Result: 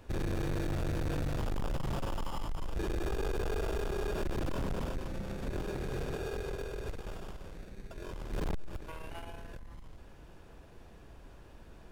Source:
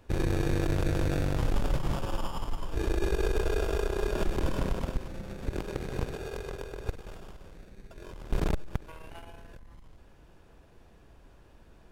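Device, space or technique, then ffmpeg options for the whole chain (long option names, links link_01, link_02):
saturation between pre-emphasis and de-emphasis: -af "highshelf=frequency=2600:gain=10,asoftclip=type=tanh:threshold=-33dB,highshelf=frequency=2600:gain=-10,volume=3dB"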